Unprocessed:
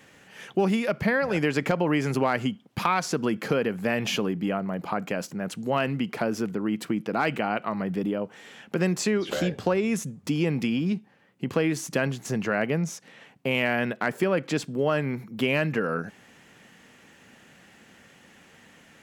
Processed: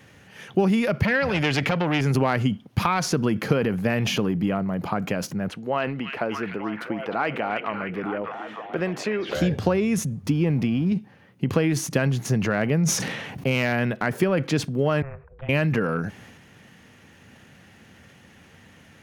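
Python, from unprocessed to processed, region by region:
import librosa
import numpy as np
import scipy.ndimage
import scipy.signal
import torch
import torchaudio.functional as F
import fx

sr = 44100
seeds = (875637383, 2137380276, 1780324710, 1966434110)

y = fx.chain(x, sr, fx.peak_eq(hz=3100.0, db=9.0, octaves=1.6),
    fx.transformer_sat(knee_hz=1500.0), at=(1.03, 2.01))
y = fx.chain(y, sr, fx.bass_treble(bass_db=-14, treble_db=-14),
    fx.echo_stepped(ms=299, hz=2700.0, octaves=-0.7, feedback_pct=70, wet_db=-2.0), at=(5.48, 9.35))
y = fx.chain(y, sr, fx.law_mismatch(coded='A'),
    fx.high_shelf(hz=3400.0, db=-10.5), at=(10.3, 10.92))
y = fx.chain(y, sr, fx.clip_hard(threshold_db=-14.5),
    fx.sustainer(db_per_s=34.0), at=(12.81, 13.73))
y = fx.chain(y, sr, fx.ladder_lowpass(hz=1500.0, resonance_pct=55),
    fx.tilt_eq(slope=2.5),
    fx.ring_mod(carrier_hz=270.0), at=(15.02, 15.49))
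y = fx.peak_eq(y, sr, hz=89.0, db=12.5, octaves=1.5)
y = fx.notch(y, sr, hz=7600.0, q=7.2)
y = fx.transient(y, sr, attack_db=2, sustain_db=6)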